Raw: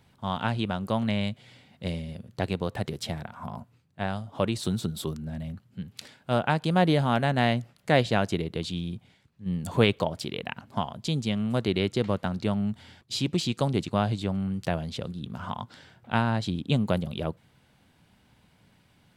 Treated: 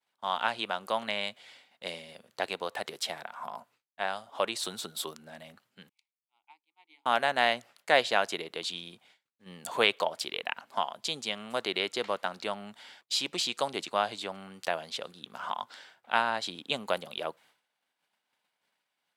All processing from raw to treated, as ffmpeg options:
-filter_complex "[0:a]asettb=1/sr,asplit=3[s0][s1][s2];[s0]atrim=end=5.894[s3];[s1]atrim=start=5.89:end=7.06,asetpts=PTS-STARTPTS,afade=t=in:d=0.004:c=qsin,afade=t=out:st=1.166:d=0.004:c=qsin,asplit=3[s4][s5][s6];[s4]bandpass=f=300:t=q:w=8,volume=1[s7];[s5]bandpass=f=870:t=q:w=8,volume=0.501[s8];[s6]bandpass=f=2240:t=q:w=8,volume=0.355[s9];[s7][s8][s9]amix=inputs=3:normalize=0,aderivative,bandreject=f=50:t=h:w=6,bandreject=f=100:t=h:w=6,bandreject=f=150:t=h:w=6,bandreject=f=200:t=h:w=6,bandreject=f=250:t=h:w=6,bandreject=f=300:t=h:w=6,bandreject=f=350:t=h:w=6,bandreject=f=400:t=h:w=6,bandreject=f=450:t=h:w=6[s10];[s2]atrim=start=7.056[s11];[s3][s10]acrossfade=d=0.004:c1=hsin:c2=qsin[s12];[s12][s11]acrossfade=d=0.004:c1=qsin:c2=hsin,agate=range=0.0224:threshold=0.00316:ratio=3:detection=peak,highpass=670,volume=1.33"

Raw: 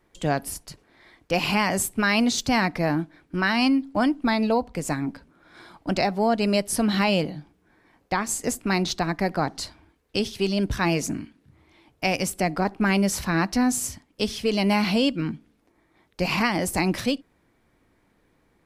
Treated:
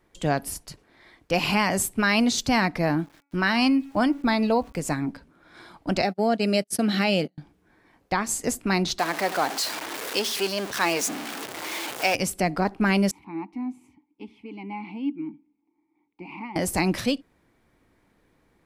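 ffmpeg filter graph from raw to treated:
-filter_complex "[0:a]asettb=1/sr,asplit=3[s0][s1][s2];[s0]atrim=end=2.994[s3];[s1]atrim=start=2.99:end=4.82,asetpts=PTS-STARTPTS,afade=t=in:d=0.004:c=qsin,afade=t=out:st=1.826:d=0.004:c=qsin,aeval=exprs='val(0)*gte(abs(val(0)),0.00335)':c=same,bandreject=f=282.6:t=h:w=4,bandreject=f=565.2:t=h:w=4,bandreject=f=847.8:t=h:w=4,bandreject=f=1130.4:t=h:w=4,bandreject=f=1413:t=h:w=4,bandreject=f=1695.6:t=h:w=4,bandreject=f=1978.2:t=h:w=4,bandreject=f=2260.8:t=h:w=4,bandreject=f=2543.4:t=h:w=4[s4];[s2]atrim=start=4.816[s5];[s3][s4]acrossfade=d=0.004:c1=hsin:c2=qsin[s6];[s6][s5]acrossfade=d=0.004:c1=qsin:c2=hsin,asettb=1/sr,asplit=3[s7][s8][s9];[s7]atrim=end=6.024[s10];[s8]atrim=start=6.02:end=7.38,asetpts=PTS-STARTPTS,afade=t=in:d=0.004:c=qsin,afade=t=out:st=1.356:d=0.004:c=qsin,agate=range=0.0141:threshold=0.0398:ratio=16:release=100:detection=peak,highpass=150,equalizer=f=1000:w=5.3:g=-13[s11];[s9]atrim=start=7.376[s12];[s10][s11]acrossfade=d=0.004:c1=hsin:c2=qsin[s13];[s13][s12]acrossfade=d=0.004:c1=qsin:c2=hsin,asettb=1/sr,asplit=3[s14][s15][s16];[s14]atrim=end=8.994[s17];[s15]atrim=start=8.99:end=12.15,asetpts=PTS-STARTPTS,afade=t=in:d=0.004:c=qsin,afade=t=out:st=3.156:d=0.004:c=qsin,aeval=exprs='val(0)+0.5*0.0596*sgn(val(0))':c=same,highpass=440[s18];[s16]atrim=start=12.146[s19];[s17][s18]acrossfade=d=0.004:c1=hsin:c2=qsin[s20];[s20][s19]acrossfade=d=0.004:c1=qsin:c2=hsin,asettb=1/sr,asplit=3[s21][s22][s23];[s21]atrim=end=13.114[s24];[s22]atrim=start=13.11:end=16.56,asetpts=PTS-STARTPTS,afade=t=in:d=0.004:c=qsin,afade=t=out:st=3.446:d=0.004:c=qsin,asplit=3[s25][s26][s27];[s25]bandpass=f=300:t=q:w=8,volume=1[s28];[s26]bandpass=f=870:t=q:w=8,volume=0.501[s29];[s27]bandpass=f=2240:t=q:w=8,volume=0.355[s30];[s28][s29][s30]amix=inputs=3:normalize=0,equalizer=f=5400:t=o:w=1.2:g=-11[s31];[s23]atrim=start=16.556[s32];[s24][s31]acrossfade=d=0.004:c1=hsin:c2=qsin[s33];[s33][s32]acrossfade=d=0.004:c1=qsin:c2=hsin"

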